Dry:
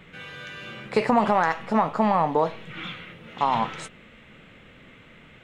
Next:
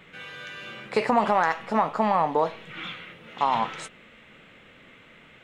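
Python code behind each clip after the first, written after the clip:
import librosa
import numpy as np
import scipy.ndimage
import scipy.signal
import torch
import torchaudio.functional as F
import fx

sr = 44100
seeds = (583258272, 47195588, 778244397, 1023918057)

y = fx.low_shelf(x, sr, hz=210.0, db=-9.0)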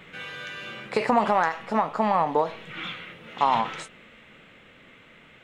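y = fx.rider(x, sr, range_db=4, speed_s=2.0)
y = fx.end_taper(y, sr, db_per_s=180.0)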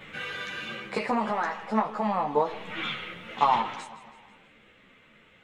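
y = fx.rider(x, sr, range_db=5, speed_s=0.5)
y = fx.echo_feedback(y, sr, ms=162, feedback_pct=51, wet_db=-16)
y = fx.ensemble(y, sr)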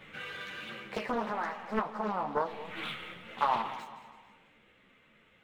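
y = scipy.ndimage.median_filter(x, 5, mode='constant')
y = fx.echo_feedback(y, sr, ms=226, feedback_pct=34, wet_db=-15.5)
y = fx.doppler_dist(y, sr, depth_ms=0.68)
y = y * librosa.db_to_amplitude(-6.0)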